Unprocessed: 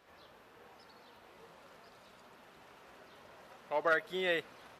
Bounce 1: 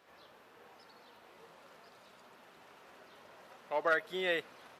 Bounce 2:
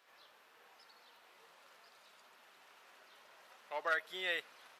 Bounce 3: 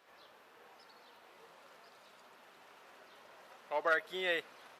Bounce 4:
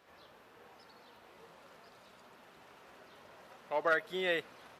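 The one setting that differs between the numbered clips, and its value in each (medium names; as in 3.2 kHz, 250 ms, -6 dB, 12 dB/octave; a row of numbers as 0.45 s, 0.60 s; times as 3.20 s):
high-pass, cutoff frequency: 160 Hz, 1.5 kHz, 470 Hz, 61 Hz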